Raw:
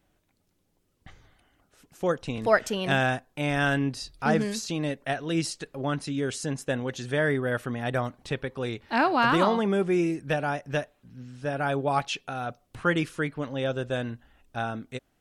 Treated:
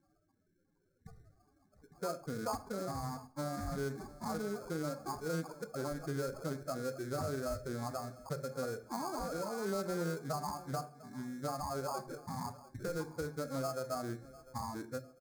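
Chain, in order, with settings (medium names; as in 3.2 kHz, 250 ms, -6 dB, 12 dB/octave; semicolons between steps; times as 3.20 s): bass shelf 89 Hz -10 dB; compression 6:1, threshold -36 dBFS, peak gain reduction 19 dB; formant shift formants +4 st; loudest bins only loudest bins 8; sample-and-hold 23×; Butterworth band-stop 2.9 kHz, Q 1.2; feedback delay 700 ms, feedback 37%, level -19 dB; on a send at -10.5 dB: reverberation RT60 0.45 s, pre-delay 19 ms; on the sum: loudspeaker Doppler distortion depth 0.18 ms; trim +2.5 dB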